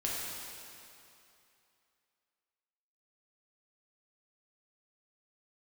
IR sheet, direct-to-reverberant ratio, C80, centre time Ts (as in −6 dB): −5.5 dB, −0.5 dB, 155 ms